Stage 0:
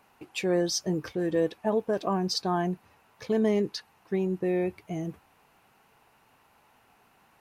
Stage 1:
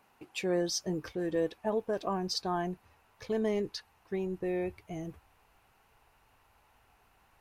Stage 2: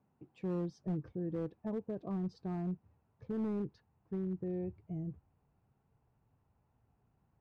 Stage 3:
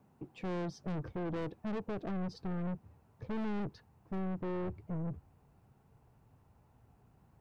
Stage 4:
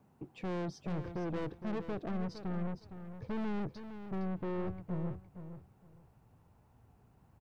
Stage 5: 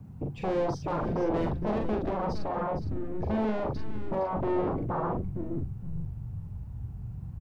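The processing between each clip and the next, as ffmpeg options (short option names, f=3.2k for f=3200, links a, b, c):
-af "asubboost=boost=8:cutoff=65,volume=-4dB"
-af "bandpass=f=140:t=q:w=1.5:csg=0,asoftclip=type=hard:threshold=-35dB,volume=4dB"
-filter_complex "[0:a]acrossover=split=610[a][b];[a]crystalizer=i=6:c=0[c];[c][b]amix=inputs=2:normalize=0,aeval=exprs='(tanh(178*val(0)+0.3)-tanh(0.3))/178':c=same,volume=10dB"
-af "aecho=1:1:462|924|1386:0.299|0.0627|0.0132"
-filter_complex "[0:a]acrossover=split=160|2600[a][b][c];[a]aeval=exprs='0.0224*sin(PI/2*10*val(0)/0.0224)':c=same[d];[d][b][c]amix=inputs=3:normalize=0,asplit=2[e][f];[f]adelay=42,volume=-4dB[g];[e][g]amix=inputs=2:normalize=0,volume=4dB"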